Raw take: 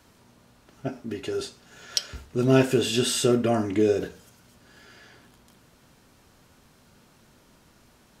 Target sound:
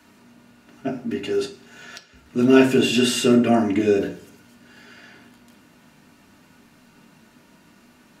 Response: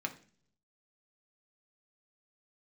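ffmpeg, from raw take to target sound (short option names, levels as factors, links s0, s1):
-filter_complex "[0:a]asettb=1/sr,asplit=3[s0][s1][s2];[s0]atrim=end=1.454[s3];[s1]atrim=start=1.45:end=2.26,asetpts=PTS-STARTPTS,afade=t=in:d=0.004:c=qsin,afade=t=out:st=0.806:d=0.004:c=qsin,acompressor=threshold=0.00891:ratio=12[s4];[s2]atrim=start=2.256[s5];[s3][s4]acrossfade=d=0.004:c1=hsin:c2=qsin[s6];[s6][s5]acrossfade=d=0.004:c1=qsin:c2=hsin[s7];[1:a]atrim=start_sample=2205,asetrate=48510,aresample=44100[s8];[s7][s8]afir=irnorm=-1:irlink=0,volume=1.58"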